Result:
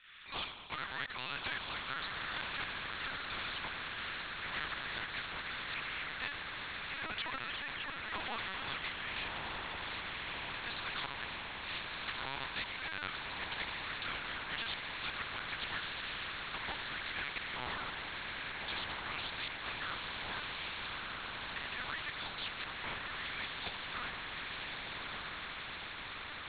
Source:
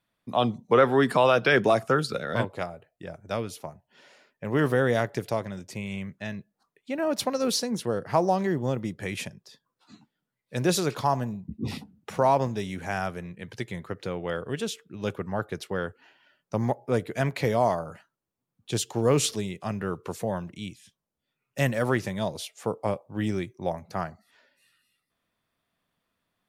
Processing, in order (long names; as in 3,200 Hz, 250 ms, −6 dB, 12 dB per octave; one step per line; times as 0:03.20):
0:07.02–0:08.65: three sine waves on the formant tracks
Chebyshev high-pass filter 1,600 Hz, order 3
downward compressor 16 to 1, threshold −38 dBFS, peak gain reduction 19 dB
hard clipping −39.5 dBFS, distortion −9 dB
shaped tremolo saw up 1.9 Hz, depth 95%
power curve on the samples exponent 0.7
on a send: feedback delay with all-pass diffusion 1,244 ms, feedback 64%, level −4.5 dB
on the sum: spring reverb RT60 2.7 s, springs 45/51 ms, chirp 30 ms, DRR 17.5 dB
linear-prediction vocoder at 8 kHz pitch kept
every bin compressed towards the loudest bin 2 to 1
level +10 dB